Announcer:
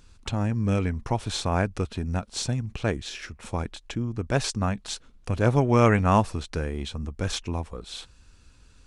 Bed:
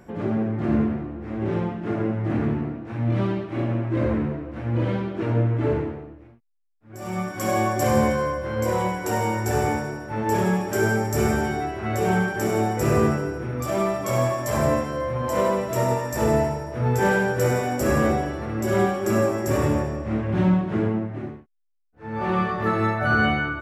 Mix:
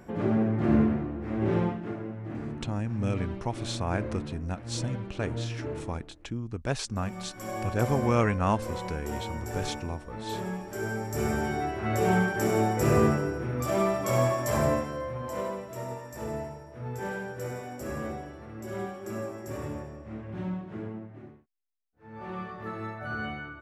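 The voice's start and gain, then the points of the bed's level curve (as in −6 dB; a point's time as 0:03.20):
2.35 s, −5.5 dB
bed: 0:01.69 −1 dB
0:02.01 −12.5 dB
0:10.75 −12.5 dB
0:11.70 −2.5 dB
0:14.49 −2.5 dB
0:15.76 −14.5 dB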